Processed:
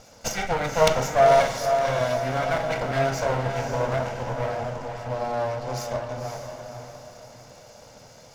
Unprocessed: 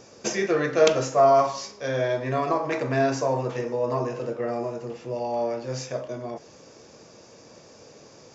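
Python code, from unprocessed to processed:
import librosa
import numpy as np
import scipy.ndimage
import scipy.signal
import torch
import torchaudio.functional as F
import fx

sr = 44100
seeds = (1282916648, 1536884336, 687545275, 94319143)

y = fx.lower_of_two(x, sr, delay_ms=1.4)
y = fx.echo_diffused(y, sr, ms=524, feedback_pct=40, wet_db=-6.0)
y = y * librosa.db_to_amplitude(1.0)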